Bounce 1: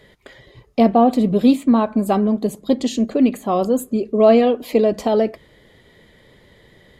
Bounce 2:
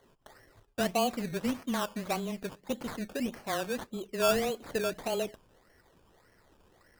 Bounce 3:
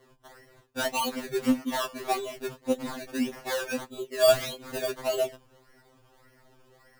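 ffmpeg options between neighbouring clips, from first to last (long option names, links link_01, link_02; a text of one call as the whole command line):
ffmpeg -i in.wav -af "equalizer=frequency=220:width_type=o:width=3:gain=-10,afreqshift=-16,acrusher=samples=17:mix=1:aa=0.000001:lfo=1:lforange=10.2:lforate=1.7,volume=-9dB" out.wav
ffmpeg -i in.wav -af "afftfilt=real='re*2.45*eq(mod(b,6),0)':imag='im*2.45*eq(mod(b,6),0)':win_size=2048:overlap=0.75,volume=6dB" out.wav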